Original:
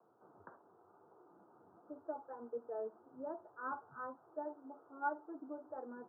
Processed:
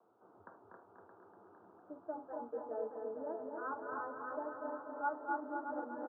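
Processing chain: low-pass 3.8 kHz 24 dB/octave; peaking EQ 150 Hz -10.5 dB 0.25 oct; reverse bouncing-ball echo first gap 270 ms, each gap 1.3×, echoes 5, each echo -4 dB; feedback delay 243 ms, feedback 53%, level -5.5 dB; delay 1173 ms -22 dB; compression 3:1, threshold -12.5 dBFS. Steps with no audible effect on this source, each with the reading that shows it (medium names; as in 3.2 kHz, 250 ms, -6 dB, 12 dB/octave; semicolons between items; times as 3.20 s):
low-pass 3.8 kHz: input has nothing above 1.6 kHz; compression, threshold -12.5 dBFS: peak at its input -24.5 dBFS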